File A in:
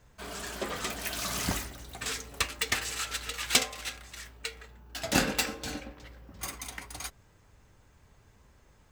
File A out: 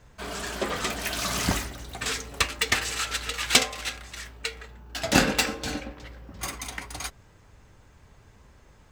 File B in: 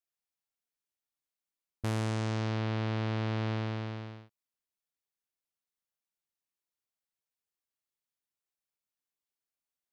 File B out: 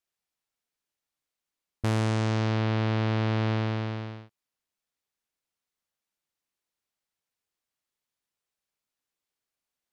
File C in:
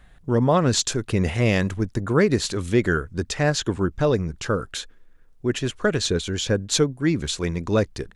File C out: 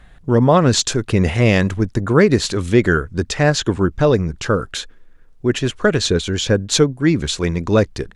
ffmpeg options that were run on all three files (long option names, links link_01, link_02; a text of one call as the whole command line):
ffmpeg -i in.wav -af "highshelf=frequency=9900:gain=-7.5,volume=6dB" out.wav